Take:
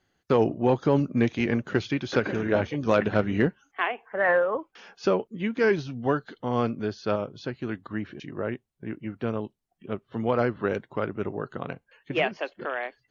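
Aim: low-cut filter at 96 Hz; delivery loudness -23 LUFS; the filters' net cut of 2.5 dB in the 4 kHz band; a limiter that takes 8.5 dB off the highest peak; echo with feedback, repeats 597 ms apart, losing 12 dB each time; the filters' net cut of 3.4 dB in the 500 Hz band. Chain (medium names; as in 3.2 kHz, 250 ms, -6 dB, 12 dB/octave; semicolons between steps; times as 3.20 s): high-pass 96 Hz; peaking EQ 500 Hz -4 dB; peaking EQ 4 kHz -3.5 dB; peak limiter -18.5 dBFS; feedback delay 597 ms, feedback 25%, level -12 dB; trim +9 dB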